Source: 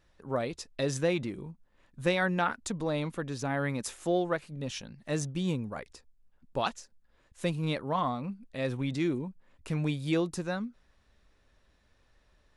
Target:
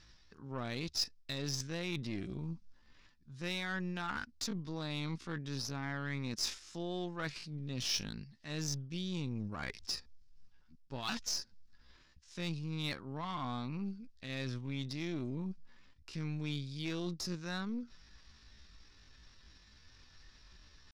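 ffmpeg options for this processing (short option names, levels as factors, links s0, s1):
-af "equalizer=f=570:t=o:w=1.1:g=-11.5,areverse,acompressor=threshold=0.00501:ratio=5,areverse,lowpass=f=5200:t=q:w=4,asoftclip=type=tanh:threshold=0.0355,aeval=exprs='0.0299*(cos(1*acos(clip(val(0)/0.0299,-1,1)))-cos(1*PI/2))+0.0015*(cos(4*acos(clip(val(0)/0.0299,-1,1)))-cos(4*PI/2))+0.00106*(cos(6*acos(clip(val(0)/0.0299,-1,1)))-cos(6*PI/2))+0.00188*(cos(8*acos(clip(val(0)/0.0299,-1,1)))-cos(8*PI/2))':c=same,atempo=0.6,volume=2.24"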